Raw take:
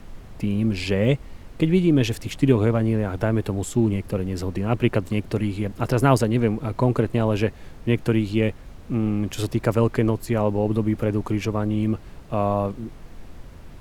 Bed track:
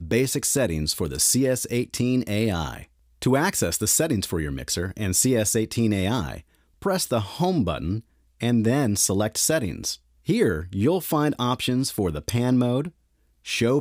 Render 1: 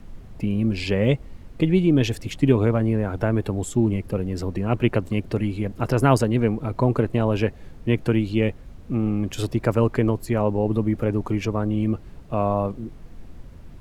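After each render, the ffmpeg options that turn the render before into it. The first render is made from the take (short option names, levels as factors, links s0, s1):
-af "afftdn=nr=6:nf=-43"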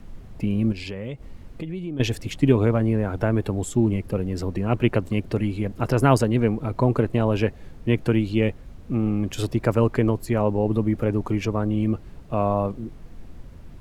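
-filter_complex "[0:a]asettb=1/sr,asplit=3[s0][s1][s2];[s0]atrim=end=0.724[s3];[s1]atrim=start=0.72:end=2,asetpts=PTS-STARTPTS,afade=t=in:d=0.004:c=qsin,afade=t=out:st=1.276:d=0.004:c=qsin,acompressor=threshold=0.0251:ratio=3:attack=3.2:release=140:knee=1:detection=peak[s4];[s2]atrim=start=1.996[s5];[s3][s4]acrossfade=d=0.004:c1=hsin:c2=qsin[s6];[s6][s5]acrossfade=d=0.004:c1=qsin:c2=hsin"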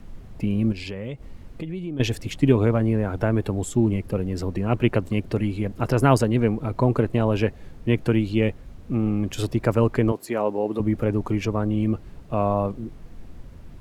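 -filter_complex "[0:a]asettb=1/sr,asplit=3[s0][s1][s2];[s0]atrim=end=10.124[s3];[s1]atrim=start=10.12:end=10.8,asetpts=PTS-STARTPTS,afade=t=in:d=0.004:c=qsin,afade=t=out:st=0.676:d=0.004:c=qsin,highpass=290[s4];[s2]atrim=start=10.796[s5];[s3][s4]acrossfade=d=0.004:c1=hsin:c2=qsin[s6];[s6][s5]acrossfade=d=0.004:c1=qsin:c2=hsin"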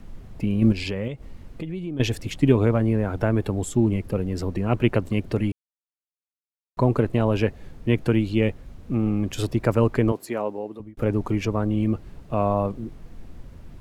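-filter_complex "[0:a]asplit=6[s0][s1][s2][s3][s4][s5];[s0]atrim=end=0.622[s6];[s1]atrim=start=0.618:end=1.082,asetpts=PTS-STARTPTS,volume=1.68[s7];[s2]atrim=start=1.078:end=5.52,asetpts=PTS-STARTPTS,afade=t=out:st=4.438:d=0.004:c=hsin[s8];[s3]atrim=start=5.52:end=6.77,asetpts=PTS-STARTPTS,volume=0[s9];[s4]atrim=start=6.77:end=10.97,asetpts=PTS-STARTPTS,afade=t=in:d=0.004:c=hsin,afade=t=out:st=3.4:d=0.8[s10];[s5]atrim=start=10.97,asetpts=PTS-STARTPTS,afade=t=in:d=0.004:c=hsin[s11];[s6][s7]acrossfade=d=0.004:c1=hsin:c2=hsin[s12];[s8][s9][s10][s11]concat=n=4:v=0:a=1[s13];[s12][s13]acrossfade=d=0.004:c1=hsin:c2=hsin"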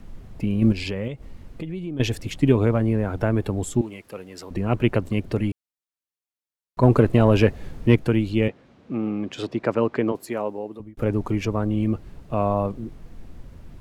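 -filter_complex "[0:a]asettb=1/sr,asplit=3[s0][s1][s2];[s0]atrim=end=3.814[s3];[s1]atrim=start=3.81:end=4.51,asetpts=PTS-STARTPTS,afade=t=in:d=0.004:c=qsin,afade=t=out:st=0.696:d=0.004:c=qsin,highpass=f=1200:p=1[s4];[s2]atrim=start=4.506[s5];[s3][s4]acrossfade=d=0.004:c1=hsin:c2=qsin[s6];[s6][s5]acrossfade=d=0.004:c1=qsin:c2=hsin,asettb=1/sr,asplit=3[s7][s8][s9];[s7]atrim=end=6.834[s10];[s8]atrim=start=6.83:end=7.96,asetpts=PTS-STARTPTS,afade=t=in:d=0.004:c=qsin,afade=t=out:st=1.126:d=0.004:c=qsin,acontrast=41[s11];[s9]atrim=start=7.956[s12];[s10][s11]acrossfade=d=0.004:c1=hsin:c2=qsin[s13];[s13][s12]acrossfade=d=0.004:c1=qsin:c2=hsin,asettb=1/sr,asplit=3[s14][s15][s16];[s14]atrim=end=8.484[s17];[s15]atrim=start=8.48:end=10.15,asetpts=PTS-STARTPTS,afade=t=in:d=0.004:c=qsin,afade=t=out:st=1.666:d=0.004:c=qsin,highpass=210,lowpass=4500[s18];[s16]atrim=start=10.146[s19];[s17][s18]acrossfade=d=0.004:c1=hsin:c2=qsin[s20];[s20][s19]acrossfade=d=0.004:c1=qsin:c2=hsin"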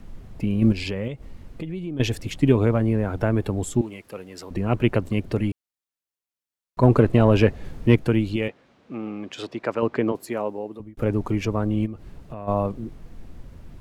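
-filter_complex "[0:a]asettb=1/sr,asplit=3[s0][s1][s2];[s0]atrim=end=6.864[s3];[s1]atrim=start=6.86:end=7.65,asetpts=PTS-STARTPTS,afade=t=in:d=0.004:c=qsin,afade=t=out:st=0.786:d=0.004:c=qsin,highshelf=f=8200:g=-5.5[s4];[s2]atrim=start=7.646[s5];[s3][s4]acrossfade=d=0.004:c1=hsin:c2=qsin[s6];[s6][s5]acrossfade=d=0.004:c1=qsin:c2=hsin,asettb=1/sr,asplit=3[s7][s8][s9];[s7]atrim=end=8.364[s10];[s8]atrim=start=8.36:end=9.83,asetpts=PTS-STARTPTS,afade=t=in:d=0.004:c=qsin,afade=t=out:st=1.466:d=0.004:c=qsin,lowshelf=f=380:g=-9[s11];[s9]atrim=start=9.826[s12];[s10][s11]acrossfade=d=0.004:c1=hsin:c2=qsin[s13];[s13][s12]acrossfade=d=0.004:c1=qsin:c2=hsin,asplit=3[s14][s15][s16];[s14]afade=t=out:st=11.85:d=0.02[s17];[s15]acompressor=threshold=0.0251:ratio=4:attack=3.2:release=140:knee=1:detection=peak,afade=t=in:st=11.85:d=0.02,afade=t=out:st=12.47:d=0.02[s18];[s16]afade=t=in:st=12.47:d=0.02[s19];[s17][s18][s19]amix=inputs=3:normalize=0"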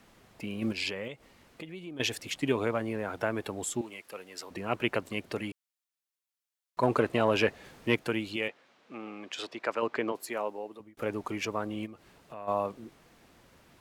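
-af "highpass=f=1000:p=1"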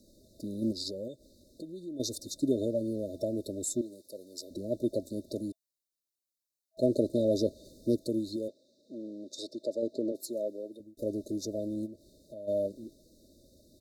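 -af "afftfilt=real='re*(1-between(b*sr/4096,650,3600))':imag='im*(1-between(b*sr/4096,650,3600))':win_size=4096:overlap=0.75,aecho=1:1:3.3:0.45"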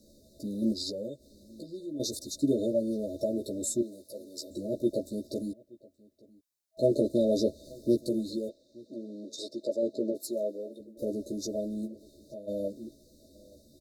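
-filter_complex "[0:a]asplit=2[s0][s1];[s1]adelay=14,volume=0.75[s2];[s0][s2]amix=inputs=2:normalize=0,asplit=2[s3][s4];[s4]adelay=874,lowpass=f=3800:p=1,volume=0.0631[s5];[s3][s5]amix=inputs=2:normalize=0"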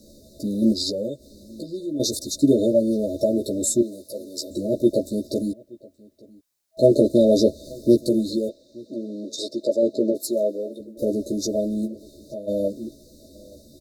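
-af "volume=2.99"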